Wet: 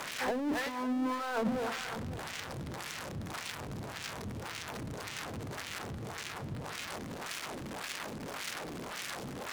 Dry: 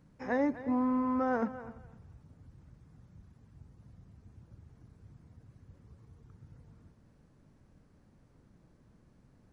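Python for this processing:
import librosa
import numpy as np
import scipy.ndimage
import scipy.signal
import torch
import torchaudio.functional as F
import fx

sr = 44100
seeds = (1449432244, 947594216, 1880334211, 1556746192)

p1 = x + 0.5 * 10.0 ** (-28.5 / 20.0) * np.diff(np.sign(x), prepend=np.sign(x[:1]))
p2 = fx.hum_notches(p1, sr, base_hz=60, count=5)
p3 = fx.over_compress(p2, sr, threshold_db=-34.0, ratio=-0.5)
p4 = fx.filter_lfo_bandpass(p3, sr, shape='sine', hz=1.8, low_hz=220.0, high_hz=2700.0, q=0.9)
p5 = fx.power_curve(p4, sr, exponent=0.5)
p6 = p5 + fx.echo_single(p5, sr, ms=544, db=-14.5, dry=0)
y = p6 * librosa.db_to_amplitude(2.5)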